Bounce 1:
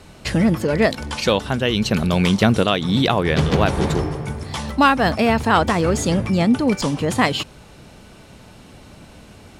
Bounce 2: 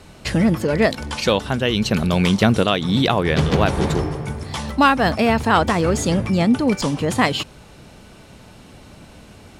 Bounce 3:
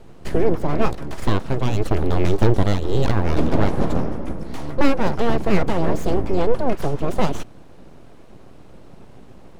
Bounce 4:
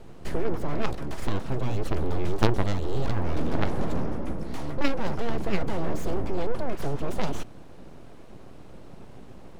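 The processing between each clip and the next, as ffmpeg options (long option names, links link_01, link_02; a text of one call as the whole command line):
ffmpeg -i in.wav -af anull out.wav
ffmpeg -i in.wav -af "aeval=exprs='abs(val(0))':channel_layout=same,tiltshelf=frequency=1200:gain=8,volume=-4dB" out.wav
ffmpeg -i in.wav -af "aeval=exprs='0.891*(cos(1*acos(clip(val(0)/0.891,-1,1)))-cos(1*PI/2))+0.0891*(cos(2*acos(clip(val(0)/0.891,-1,1)))-cos(2*PI/2))+0.2*(cos(4*acos(clip(val(0)/0.891,-1,1)))-cos(4*PI/2))':channel_layout=same,volume=-1dB" out.wav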